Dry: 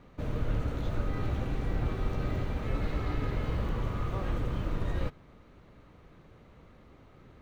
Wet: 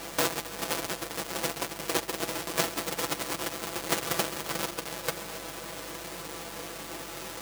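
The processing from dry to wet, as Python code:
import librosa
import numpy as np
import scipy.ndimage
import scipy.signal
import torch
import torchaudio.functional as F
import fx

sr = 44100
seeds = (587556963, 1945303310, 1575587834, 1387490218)

p1 = fx.halfwave_hold(x, sr)
p2 = fx.over_compress(p1, sr, threshold_db=-31.0, ratio=-0.5)
p3 = scipy.signal.sosfilt(scipy.signal.butter(2, 380.0, 'highpass', fs=sr, output='sos'), p2)
p4 = fx.high_shelf(p3, sr, hz=4000.0, db=9.0)
p5 = p4 + 0.65 * np.pad(p4, (int(6.0 * sr / 1000.0), 0))[:len(p4)]
p6 = p5 + fx.echo_heads(p5, sr, ms=134, heads='all three', feedback_pct=59, wet_db=-18.0, dry=0)
p7 = fx.add_hum(p6, sr, base_hz=50, snr_db=22)
y = p7 * librosa.db_to_amplitude(6.0)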